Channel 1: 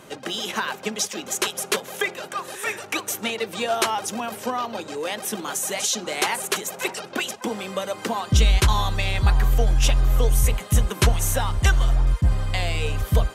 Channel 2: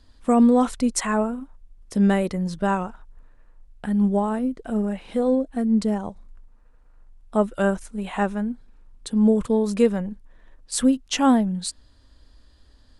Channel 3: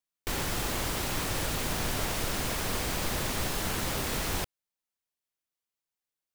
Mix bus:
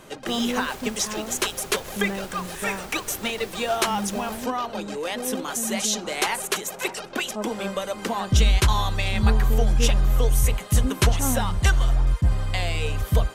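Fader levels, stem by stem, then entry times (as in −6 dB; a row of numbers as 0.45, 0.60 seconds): −1.0, −11.0, −10.5 decibels; 0.00, 0.00, 0.00 seconds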